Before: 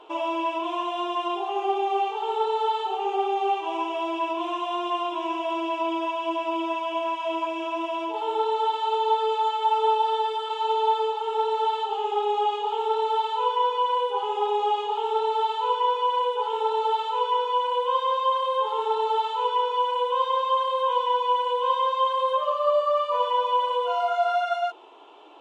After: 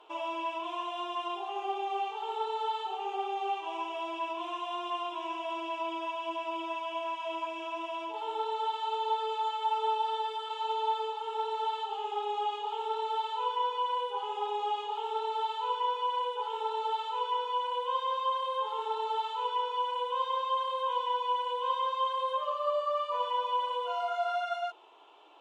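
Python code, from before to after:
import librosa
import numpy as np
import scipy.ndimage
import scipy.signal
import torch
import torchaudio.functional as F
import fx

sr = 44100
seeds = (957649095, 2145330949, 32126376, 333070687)

y = fx.low_shelf(x, sr, hz=400.0, db=-11.5)
y = y * librosa.db_to_amplitude(-5.5)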